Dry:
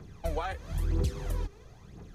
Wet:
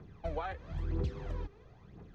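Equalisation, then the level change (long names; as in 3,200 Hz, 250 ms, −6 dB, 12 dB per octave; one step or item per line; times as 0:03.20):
high-frequency loss of the air 160 metres
low-shelf EQ 68 Hz −5.5 dB
high-shelf EQ 5,800 Hz −6.5 dB
−3.0 dB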